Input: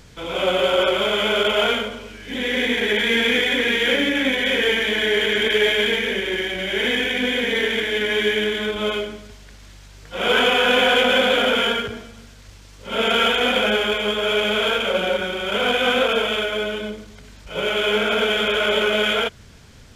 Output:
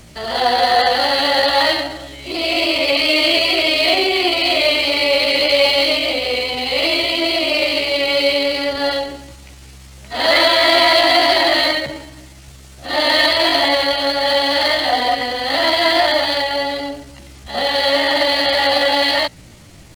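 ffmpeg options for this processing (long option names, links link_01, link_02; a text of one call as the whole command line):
ffmpeg -i in.wav -filter_complex "[0:a]acrossover=split=240[link_01][link_02];[link_01]asoftclip=type=tanh:threshold=-33dB[link_03];[link_03][link_02]amix=inputs=2:normalize=0,asetrate=58866,aresample=44100,atempo=0.749154,volume=4.5dB" out.wav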